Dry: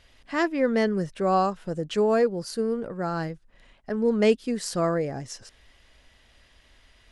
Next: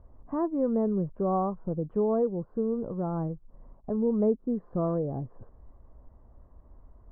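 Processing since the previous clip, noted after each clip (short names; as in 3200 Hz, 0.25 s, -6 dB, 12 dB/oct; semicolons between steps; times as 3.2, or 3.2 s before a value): Chebyshev low-pass 1100 Hz, order 4; low shelf 270 Hz +9 dB; compressor 1.5:1, threshold -35 dBFS, peak gain reduction 8.5 dB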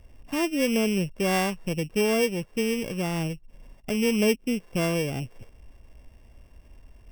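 sample sorter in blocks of 16 samples; gain +2.5 dB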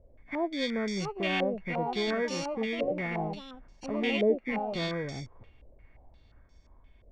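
nonlinear frequency compression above 1400 Hz 1.5:1; echoes that change speed 0.745 s, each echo +4 st, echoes 2, each echo -6 dB; stepped low-pass 5.7 Hz 560–5600 Hz; gain -8 dB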